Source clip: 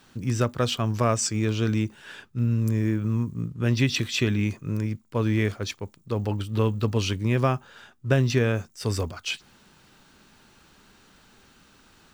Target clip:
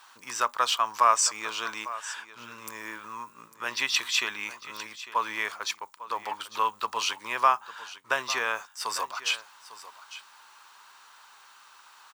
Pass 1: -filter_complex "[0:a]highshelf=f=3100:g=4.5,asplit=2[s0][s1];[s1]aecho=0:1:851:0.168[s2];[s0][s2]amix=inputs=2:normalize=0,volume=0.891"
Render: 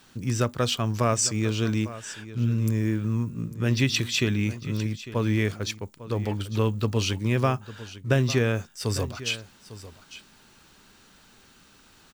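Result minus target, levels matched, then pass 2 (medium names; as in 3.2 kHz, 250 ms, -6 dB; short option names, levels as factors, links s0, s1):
1 kHz band -11.0 dB
-filter_complex "[0:a]highpass=f=1000:t=q:w=3.9,highshelf=f=3100:g=4.5,asplit=2[s0][s1];[s1]aecho=0:1:851:0.168[s2];[s0][s2]amix=inputs=2:normalize=0,volume=0.891"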